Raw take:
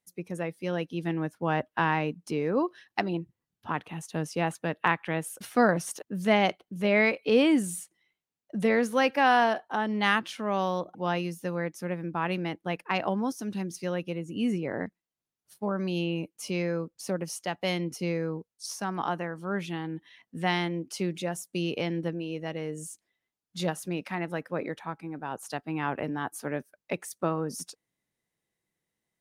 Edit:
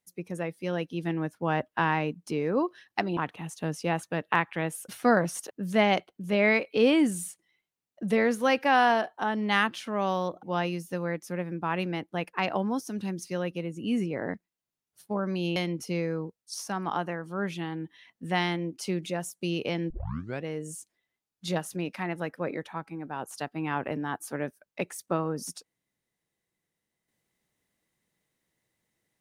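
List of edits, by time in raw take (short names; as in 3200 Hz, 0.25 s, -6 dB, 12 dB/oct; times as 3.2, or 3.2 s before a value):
3.17–3.69 cut
16.08–17.68 cut
22.02 tape start 0.54 s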